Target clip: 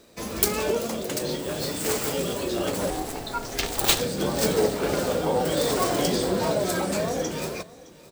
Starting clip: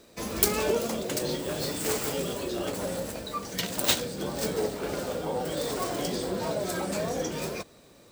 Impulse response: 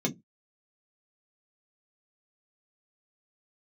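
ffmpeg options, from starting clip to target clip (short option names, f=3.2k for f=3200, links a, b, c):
-filter_complex "[0:a]dynaudnorm=f=430:g=9:m=9dB,asettb=1/sr,asplit=3[a][b][c];[a]atrim=end=2.904[d];[b]atrim=start=2.9:end=4,asetpts=PTS-STARTPTS,afade=t=in:d=0.004:c=qsin,afade=t=out:st=1.096:d=0.004:c=qsin,aeval=exprs='val(0)*sin(2*PI*220*n/s)':c=same[e];[c]atrim=start=3.996[f];[d][e]acrossfade=d=0.004:c1=hsin:c2=qsin[g];[g][f]acrossfade=d=0.004:c1=qsin:c2=hsin,asplit=2[h][i];[i]aecho=0:1:615:0.0944[j];[h][j]amix=inputs=2:normalize=0,volume=1dB"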